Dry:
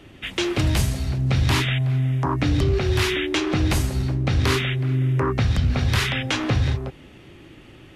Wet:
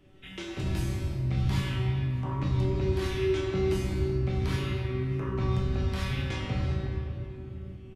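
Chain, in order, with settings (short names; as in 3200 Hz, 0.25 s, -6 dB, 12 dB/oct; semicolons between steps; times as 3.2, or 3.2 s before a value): low shelf 330 Hz +9 dB; shoebox room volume 140 m³, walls hard, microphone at 0.46 m; wow and flutter 57 cents; resonator 190 Hz, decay 0.77 s, harmonics all, mix 90%; echo 0.612 s -24 dB; gain -2 dB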